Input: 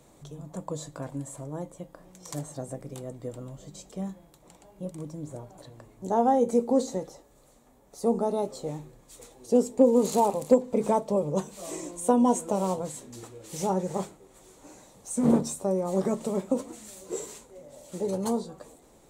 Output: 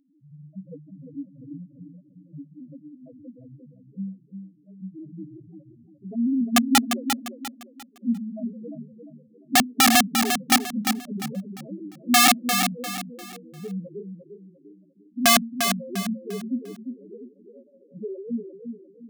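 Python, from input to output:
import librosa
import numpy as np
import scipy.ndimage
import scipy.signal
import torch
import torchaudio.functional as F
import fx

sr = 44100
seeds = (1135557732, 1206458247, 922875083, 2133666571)

p1 = scipy.signal.sosfilt(scipy.signal.butter(2, 5100.0, 'lowpass', fs=sr, output='sos'), x)
p2 = fx.env_flanger(p1, sr, rest_ms=11.0, full_db=-18.0)
p3 = fx.peak_eq(p2, sr, hz=260.0, db=14.5, octaves=1.6)
p4 = fx.spec_topn(p3, sr, count=1)
p5 = (np.mod(10.0 ** (12.0 / 20.0) * p4 + 1.0, 2.0) - 1.0) / 10.0 ** (12.0 / 20.0)
p6 = fx.high_shelf(p5, sr, hz=2100.0, db=10.5)
p7 = p6 + fx.echo_feedback(p6, sr, ms=349, feedback_pct=33, wet_db=-7, dry=0)
y = F.gain(torch.from_numpy(p7), -3.5).numpy()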